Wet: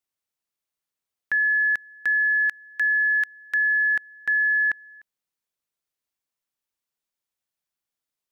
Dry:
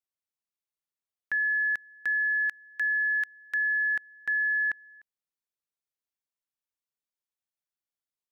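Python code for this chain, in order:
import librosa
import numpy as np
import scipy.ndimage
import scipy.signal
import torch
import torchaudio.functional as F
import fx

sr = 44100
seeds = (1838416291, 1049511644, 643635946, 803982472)

y = fx.quant_float(x, sr, bits=8)
y = F.gain(torch.from_numpy(y), 5.5).numpy()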